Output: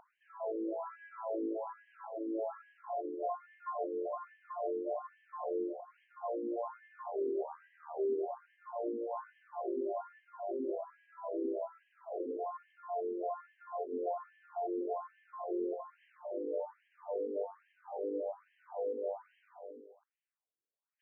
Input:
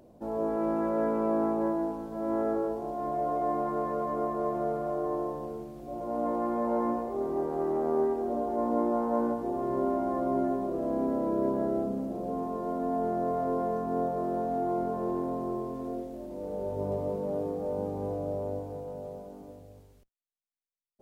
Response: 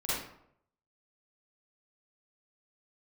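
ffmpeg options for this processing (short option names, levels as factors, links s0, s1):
-af "areverse,acompressor=threshold=0.0126:ratio=10,areverse,afftfilt=real='re*between(b*sr/1024,360*pow(2300/360,0.5+0.5*sin(2*PI*1.2*pts/sr))/1.41,360*pow(2300/360,0.5+0.5*sin(2*PI*1.2*pts/sr))*1.41)':imag='im*between(b*sr/1024,360*pow(2300/360,0.5+0.5*sin(2*PI*1.2*pts/sr))/1.41,360*pow(2300/360,0.5+0.5*sin(2*PI*1.2*pts/sr))*1.41)':win_size=1024:overlap=0.75,volume=2.51"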